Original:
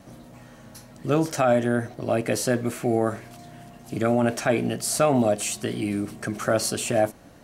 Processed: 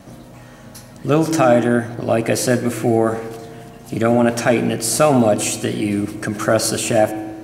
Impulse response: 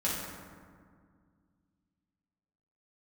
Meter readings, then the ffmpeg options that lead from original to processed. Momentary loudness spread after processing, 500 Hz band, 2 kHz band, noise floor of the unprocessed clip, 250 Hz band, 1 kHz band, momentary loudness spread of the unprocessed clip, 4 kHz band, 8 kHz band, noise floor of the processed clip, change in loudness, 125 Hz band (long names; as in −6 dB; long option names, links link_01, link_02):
10 LU, +6.5 dB, +6.5 dB, −48 dBFS, +7.5 dB, +7.0 dB, 8 LU, +6.5 dB, +6.5 dB, −40 dBFS, +7.0 dB, +6.5 dB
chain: -filter_complex "[0:a]asplit=2[link_01][link_02];[1:a]atrim=start_sample=2205,asetrate=74970,aresample=44100,adelay=88[link_03];[link_02][link_03]afir=irnorm=-1:irlink=0,volume=-16dB[link_04];[link_01][link_04]amix=inputs=2:normalize=0,volume=6.5dB"